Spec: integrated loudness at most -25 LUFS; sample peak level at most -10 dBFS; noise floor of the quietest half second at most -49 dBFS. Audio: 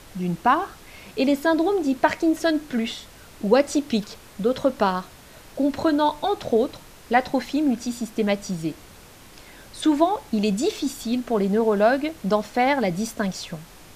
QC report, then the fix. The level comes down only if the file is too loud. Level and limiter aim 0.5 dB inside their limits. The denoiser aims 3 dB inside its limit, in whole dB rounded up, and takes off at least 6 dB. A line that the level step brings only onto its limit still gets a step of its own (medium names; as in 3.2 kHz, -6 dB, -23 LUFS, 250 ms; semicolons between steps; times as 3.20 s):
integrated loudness -23.0 LUFS: fail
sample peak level -4.5 dBFS: fail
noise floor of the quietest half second -46 dBFS: fail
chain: noise reduction 6 dB, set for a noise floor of -46 dBFS; trim -2.5 dB; peak limiter -10.5 dBFS